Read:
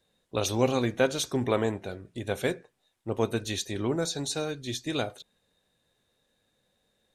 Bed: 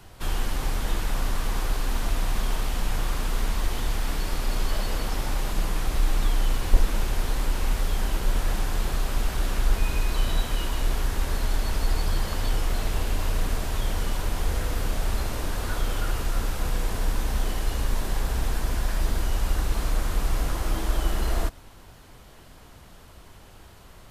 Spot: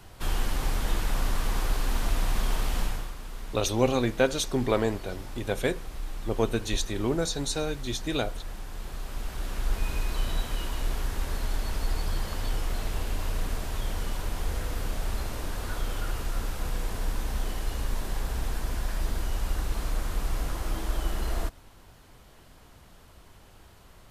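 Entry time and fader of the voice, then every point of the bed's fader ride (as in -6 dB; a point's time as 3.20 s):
3.20 s, +1.0 dB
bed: 2.82 s -1 dB
3.15 s -13 dB
8.64 s -13 dB
9.88 s -4.5 dB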